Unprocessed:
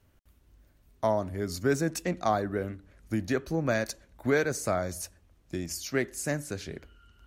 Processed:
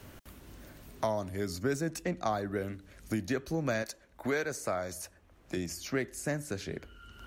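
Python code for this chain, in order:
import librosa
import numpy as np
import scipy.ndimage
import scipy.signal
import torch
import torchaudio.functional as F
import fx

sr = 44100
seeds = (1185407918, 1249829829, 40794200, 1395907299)

y = fx.low_shelf(x, sr, hz=220.0, db=-11.5, at=(3.82, 5.57))
y = fx.band_squash(y, sr, depth_pct=70)
y = y * 10.0 ** (-3.5 / 20.0)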